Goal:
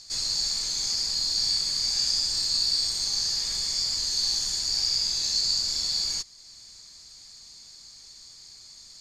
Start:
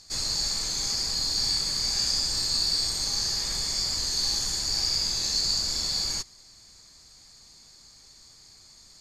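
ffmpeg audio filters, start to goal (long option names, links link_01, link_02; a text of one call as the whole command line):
ffmpeg -i in.wav -filter_complex "[0:a]equalizer=frequency=4800:width=0.56:gain=8.5,asplit=2[link_01][link_02];[link_02]acompressor=threshold=-38dB:ratio=6,volume=-2dB[link_03];[link_01][link_03]amix=inputs=2:normalize=0,volume=-8dB" out.wav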